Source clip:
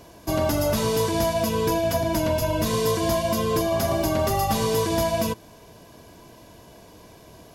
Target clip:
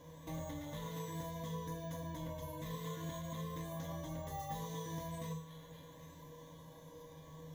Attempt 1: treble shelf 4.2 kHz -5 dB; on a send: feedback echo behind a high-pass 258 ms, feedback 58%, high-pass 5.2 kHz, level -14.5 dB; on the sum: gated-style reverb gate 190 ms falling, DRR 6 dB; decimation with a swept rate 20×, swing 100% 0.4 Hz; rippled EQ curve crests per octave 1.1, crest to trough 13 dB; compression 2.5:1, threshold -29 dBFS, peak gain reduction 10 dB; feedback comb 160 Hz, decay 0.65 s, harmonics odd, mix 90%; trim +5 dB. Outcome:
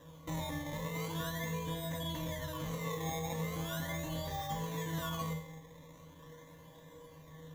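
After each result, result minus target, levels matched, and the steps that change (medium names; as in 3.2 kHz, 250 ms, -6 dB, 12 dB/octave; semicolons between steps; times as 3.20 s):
decimation with a swept rate: distortion +13 dB; compression: peak gain reduction -4.5 dB
change: decimation with a swept rate 4×, swing 100% 0.4 Hz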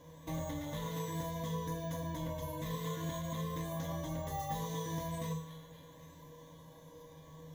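compression: peak gain reduction -4.5 dB
change: compression 2.5:1, threshold -36.5 dBFS, peak gain reduction 14 dB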